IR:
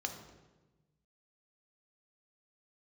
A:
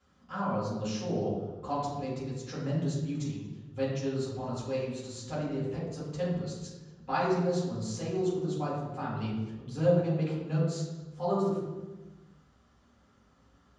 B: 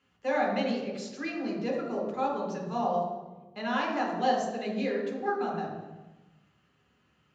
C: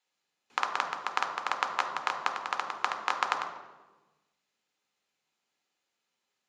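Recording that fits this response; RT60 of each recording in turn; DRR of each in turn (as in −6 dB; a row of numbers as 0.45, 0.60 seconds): C; 1.2, 1.2, 1.2 seconds; −9.0, −3.0, 3.5 decibels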